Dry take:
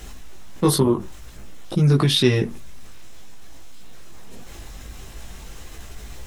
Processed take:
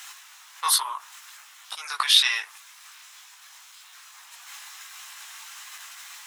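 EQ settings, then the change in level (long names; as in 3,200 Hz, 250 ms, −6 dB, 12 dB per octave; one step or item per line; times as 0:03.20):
Butterworth high-pass 960 Hz 36 dB per octave
+4.0 dB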